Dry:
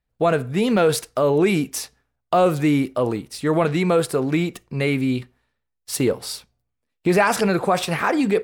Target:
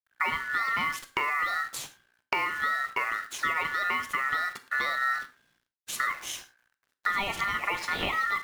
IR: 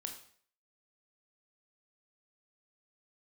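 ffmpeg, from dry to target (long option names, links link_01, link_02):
-filter_complex "[0:a]acompressor=threshold=-28dB:ratio=20,aemphasis=mode=reproduction:type=cd,acrusher=bits=9:dc=4:mix=0:aa=0.000001,aeval=exprs='val(0)*sin(2*PI*1600*n/s)':channel_layout=same,asplit=2[link_01][link_02];[1:a]atrim=start_sample=2205,afade=type=out:start_time=0.17:duration=0.01,atrim=end_sample=7938[link_03];[link_02][link_03]afir=irnorm=-1:irlink=0,volume=1.5dB[link_04];[link_01][link_04]amix=inputs=2:normalize=0"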